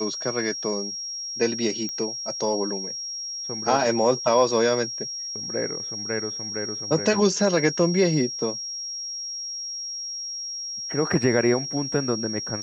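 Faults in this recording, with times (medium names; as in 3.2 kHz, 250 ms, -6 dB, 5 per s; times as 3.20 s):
whine 5.6 kHz -30 dBFS
1.89 s: pop -18 dBFS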